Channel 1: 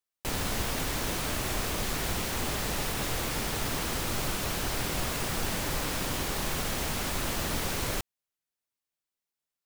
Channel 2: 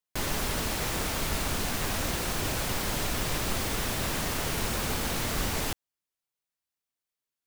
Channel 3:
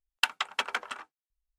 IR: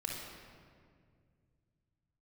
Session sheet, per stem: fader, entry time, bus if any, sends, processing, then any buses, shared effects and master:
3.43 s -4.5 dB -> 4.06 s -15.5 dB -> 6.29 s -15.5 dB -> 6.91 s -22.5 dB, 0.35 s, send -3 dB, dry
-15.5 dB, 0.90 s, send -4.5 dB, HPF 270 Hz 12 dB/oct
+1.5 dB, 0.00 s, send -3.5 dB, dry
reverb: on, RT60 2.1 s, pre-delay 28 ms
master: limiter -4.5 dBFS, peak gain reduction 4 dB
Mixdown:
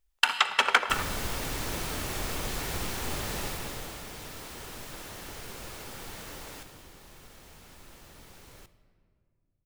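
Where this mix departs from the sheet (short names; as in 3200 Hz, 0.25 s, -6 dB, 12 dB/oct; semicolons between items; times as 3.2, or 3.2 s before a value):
stem 1: entry 0.35 s -> 0.65 s; stem 3 +1.5 dB -> +9.0 dB; reverb return -8.0 dB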